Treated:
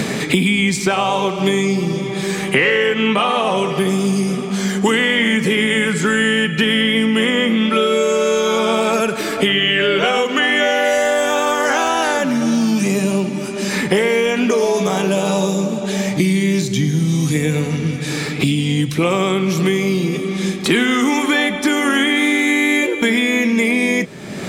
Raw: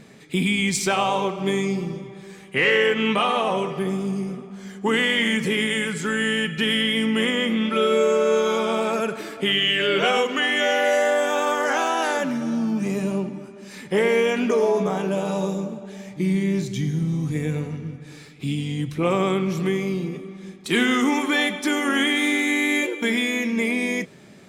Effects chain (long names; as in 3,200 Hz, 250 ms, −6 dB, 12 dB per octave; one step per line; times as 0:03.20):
multiband upward and downward compressor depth 100%
level +5 dB